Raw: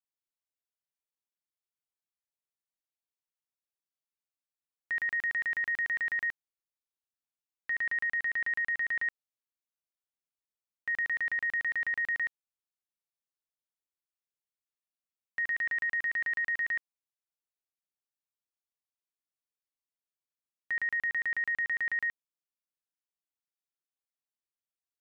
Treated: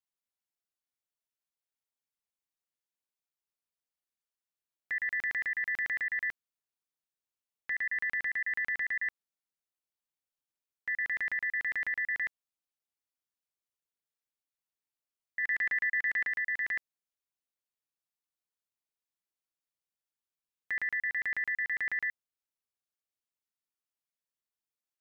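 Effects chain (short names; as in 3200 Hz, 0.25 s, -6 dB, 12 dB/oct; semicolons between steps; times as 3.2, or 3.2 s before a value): 15.43–16.27 dynamic EQ 1800 Hz, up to +3 dB, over -40 dBFS, Q 5.9; ring modulator 110 Hz; gain +1.5 dB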